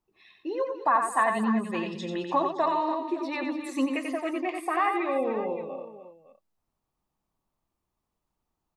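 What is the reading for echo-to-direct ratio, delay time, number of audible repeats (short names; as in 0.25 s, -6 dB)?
-4.0 dB, 90 ms, 4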